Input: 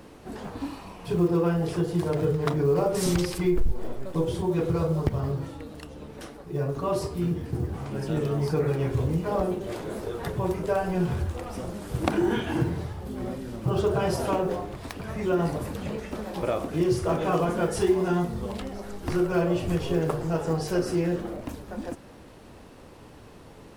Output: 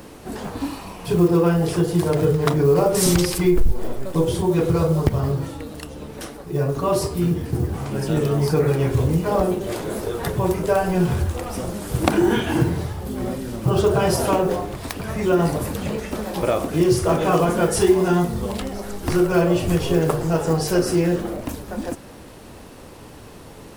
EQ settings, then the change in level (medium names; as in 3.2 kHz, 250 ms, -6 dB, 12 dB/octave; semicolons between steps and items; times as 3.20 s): treble shelf 6.7 kHz +8.5 dB; +6.5 dB